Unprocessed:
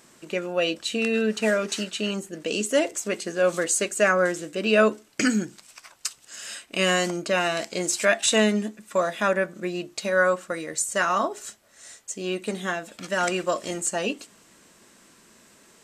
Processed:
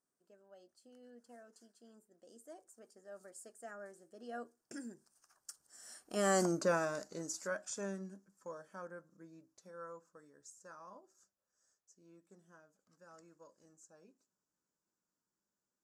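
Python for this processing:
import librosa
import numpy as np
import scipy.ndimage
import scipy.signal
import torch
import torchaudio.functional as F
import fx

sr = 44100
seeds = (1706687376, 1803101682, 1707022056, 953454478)

y = fx.doppler_pass(x, sr, speed_mps=32, closest_m=5.9, pass_at_s=6.48)
y = fx.band_shelf(y, sr, hz=2800.0, db=-15.5, octaves=1.2)
y = F.gain(torch.from_numpy(y), -4.0).numpy()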